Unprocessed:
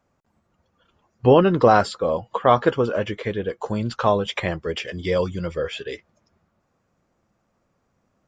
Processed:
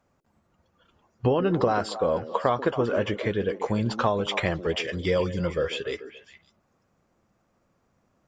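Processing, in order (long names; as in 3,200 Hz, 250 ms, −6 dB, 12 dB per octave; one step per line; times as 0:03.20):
downward compressor 10 to 1, threshold −19 dBFS, peak gain reduction 10.5 dB
on a send: echo through a band-pass that steps 138 ms, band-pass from 310 Hz, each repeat 1.4 octaves, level −7 dB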